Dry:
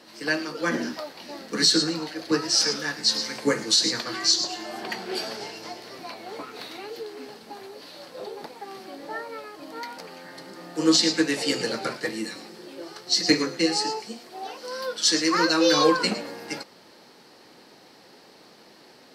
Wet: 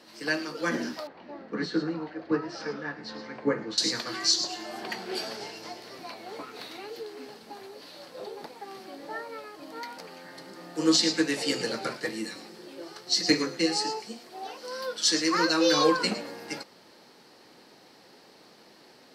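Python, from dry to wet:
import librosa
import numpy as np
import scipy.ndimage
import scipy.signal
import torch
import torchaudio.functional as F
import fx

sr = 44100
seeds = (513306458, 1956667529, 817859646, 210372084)

y = fx.lowpass(x, sr, hz=1600.0, slope=12, at=(1.07, 3.78))
y = y * librosa.db_to_amplitude(-3.0)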